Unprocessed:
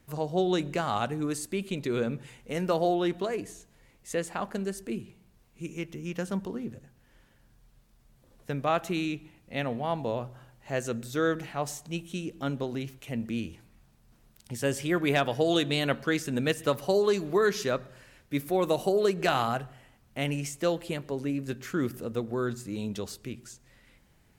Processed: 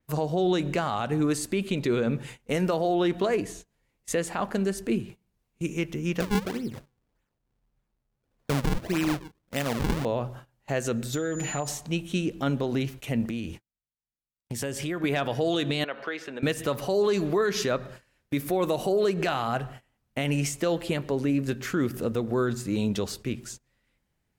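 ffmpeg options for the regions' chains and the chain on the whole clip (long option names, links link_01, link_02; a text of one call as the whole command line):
ffmpeg -i in.wav -filter_complex "[0:a]asettb=1/sr,asplit=3[link_01][link_02][link_03];[link_01]atrim=end=6.204[link_04];[link_02]atrim=start=6.2:end=10.05,asetpts=PTS-STARTPTS,afade=type=in:duration=0.004:curve=qsin,afade=type=out:start_time=3.846:duration=0.004:curve=qsin,acrusher=samples=40:mix=1:aa=0.000001:lfo=1:lforange=64:lforate=1.7,tremolo=f=1.3:d=0.4[link_05];[link_03]atrim=start=10.046[link_06];[link_04][link_05]acrossfade=duration=0.004:curve1=hsin:curve2=qsin[link_07];[link_07][link_06]acrossfade=duration=0.004:curve1=qsin:curve2=hsin,asettb=1/sr,asplit=3[link_08][link_09][link_10];[link_08]atrim=end=11.134[link_11];[link_09]atrim=start=11.13:end=11.68,asetpts=PTS-STARTPTS,afade=type=in:duration=0.004:curve=qsin,afade=type=out:start_time=0.546:duration=0.004:curve=qsin,aecho=1:1:6.6:0.72,atrim=end_sample=24255,aeval=exprs='val(0)+0.0126*sin(2*PI*7000*n/s)':channel_layout=same,acompressor=threshold=-32dB:ratio=12:attack=3.2:release=140:knee=1:detection=peak[link_12];[link_10]atrim=start=11.676[link_13];[link_11][link_12]acrossfade=duration=0.004:curve1=hsin:curve2=qsin[link_14];[link_14][link_13]acrossfade=duration=0.004:curve1=qsin:curve2=hsin,asettb=1/sr,asplit=3[link_15][link_16][link_17];[link_15]atrim=end=13.254[link_18];[link_16]atrim=start=13.25:end=15.04,asetpts=PTS-STARTPTS,afade=type=in:duration=0.004:curve=qsin,afade=type=out:start_time=1.786:duration=0.004:curve=qsin,agate=range=-28dB:threshold=-53dB:ratio=16:release=100:detection=peak,acompressor=threshold=-36dB:ratio=5:attack=3.2:release=140:knee=1:detection=peak[link_19];[link_17]atrim=start=15.036[link_20];[link_18][link_19]acrossfade=duration=0.004:curve1=hsin:curve2=qsin[link_21];[link_21][link_20]acrossfade=duration=0.004:curve1=qsin:curve2=hsin,asettb=1/sr,asplit=3[link_22][link_23][link_24];[link_22]atrim=end=15.844[link_25];[link_23]atrim=start=15.84:end=16.43,asetpts=PTS-STARTPTS,afade=type=in:duration=0.004:curve=qsin,afade=type=out:start_time=0.586:duration=0.004:curve=qsin,acompressor=threshold=-32dB:ratio=6:attack=3.2:release=140:knee=1:detection=peak,acrossover=split=370 4000:gain=0.0794 1 0.1[link_26][link_27][link_28];[link_26][link_27][link_28]amix=inputs=3:normalize=0[link_29];[link_24]atrim=start=16.426[link_30];[link_25][link_29]acrossfade=duration=0.004:curve1=hsin:curve2=qsin[link_31];[link_31][link_30]acrossfade=duration=0.004:curve1=qsin:curve2=hsin,agate=range=-21dB:threshold=-48dB:ratio=16:detection=peak,alimiter=limit=-24dB:level=0:latency=1:release=105,adynamicequalizer=threshold=0.00178:dfrequency=5800:dqfactor=0.7:tfrequency=5800:tqfactor=0.7:attack=5:release=100:ratio=0.375:range=2.5:mode=cutabove:tftype=highshelf,volume=7.5dB" out.wav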